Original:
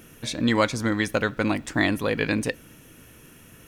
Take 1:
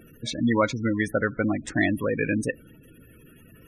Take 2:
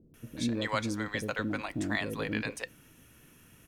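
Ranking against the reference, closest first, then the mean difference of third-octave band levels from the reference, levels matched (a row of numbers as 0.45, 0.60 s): 2, 1; 6.0, 9.0 dB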